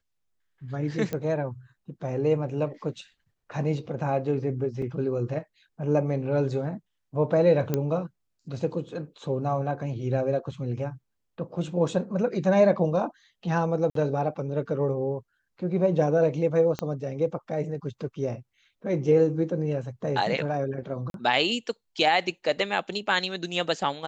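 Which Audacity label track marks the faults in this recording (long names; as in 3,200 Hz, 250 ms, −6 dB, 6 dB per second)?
1.130000	1.130000	click −17 dBFS
4.820000	4.820000	drop-out 3.4 ms
7.740000	7.740000	click −12 dBFS
13.900000	13.950000	drop-out 53 ms
16.790000	16.790000	click −16 dBFS
21.100000	21.140000	drop-out 42 ms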